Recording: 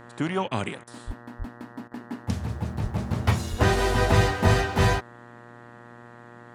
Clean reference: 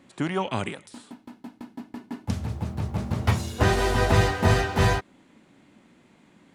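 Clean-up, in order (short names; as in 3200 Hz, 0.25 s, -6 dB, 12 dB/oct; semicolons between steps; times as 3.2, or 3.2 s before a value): de-hum 119.3 Hz, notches 16; de-plosive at 1.06/1.38/2.82/3.5/4.45; interpolate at 0.48/0.84/1.88, 32 ms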